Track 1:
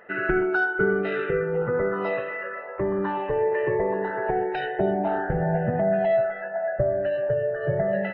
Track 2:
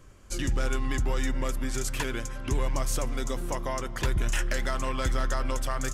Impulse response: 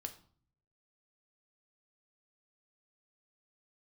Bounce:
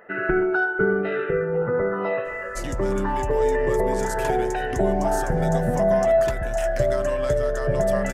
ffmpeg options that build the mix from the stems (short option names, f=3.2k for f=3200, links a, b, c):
-filter_complex "[0:a]volume=-0.5dB,asplit=2[a][b];[b]volume=-6.5dB[c];[1:a]acompressor=threshold=-27dB:ratio=6,adelay=2250,volume=2dB[d];[2:a]atrim=start_sample=2205[e];[c][e]afir=irnorm=-1:irlink=0[f];[a][d][f]amix=inputs=3:normalize=0,equalizer=f=3.3k:t=o:w=1.6:g=-4.5"